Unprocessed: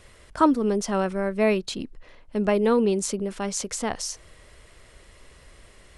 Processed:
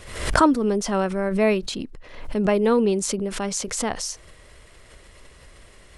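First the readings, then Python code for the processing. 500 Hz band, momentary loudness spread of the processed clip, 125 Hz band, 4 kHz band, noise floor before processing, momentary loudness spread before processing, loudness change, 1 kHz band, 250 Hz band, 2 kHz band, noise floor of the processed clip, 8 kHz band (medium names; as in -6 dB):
+2.0 dB, 12 LU, +3.5 dB, +3.5 dB, -53 dBFS, 13 LU, +2.0 dB, +2.5 dB, +2.0 dB, +4.5 dB, -49 dBFS, +3.0 dB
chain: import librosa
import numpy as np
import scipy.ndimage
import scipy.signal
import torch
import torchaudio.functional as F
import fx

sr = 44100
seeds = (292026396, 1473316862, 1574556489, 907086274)

y = fx.pre_swell(x, sr, db_per_s=73.0)
y = y * 10.0 ** (1.5 / 20.0)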